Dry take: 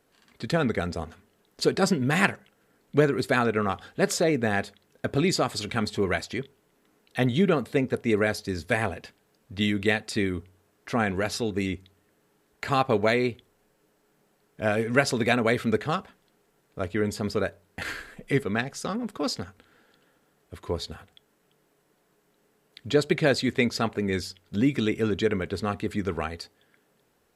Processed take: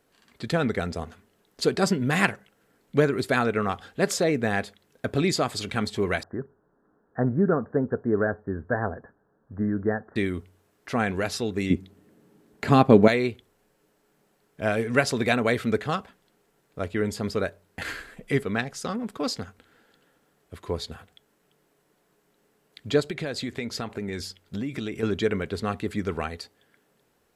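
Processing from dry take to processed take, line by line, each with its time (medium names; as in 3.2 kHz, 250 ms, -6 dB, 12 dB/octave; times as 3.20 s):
6.23–10.16 s: steep low-pass 1.7 kHz 96 dB/octave
11.70–13.08 s: peaking EQ 220 Hz +13.5 dB 2.3 oct
23.00–25.03 s: compression, threshold -27 dBFS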